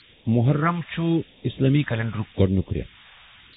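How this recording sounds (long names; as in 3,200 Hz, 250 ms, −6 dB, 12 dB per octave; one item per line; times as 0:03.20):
a quantiser's noise floor 8 bits, dither triangular
phaser sweep stages 2, 0.86 Hz, lowest notch 310–1,400 Hz
AAC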